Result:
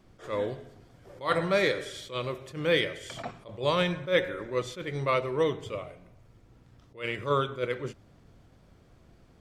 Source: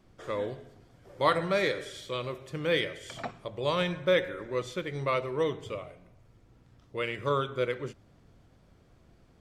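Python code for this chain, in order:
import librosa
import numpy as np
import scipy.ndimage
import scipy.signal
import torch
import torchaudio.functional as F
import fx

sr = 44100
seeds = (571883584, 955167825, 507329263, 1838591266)

y = fx.attack_slew(x, sr, db_per_s=200.0)
y = y * librosa.db_to_amplitude(2.5)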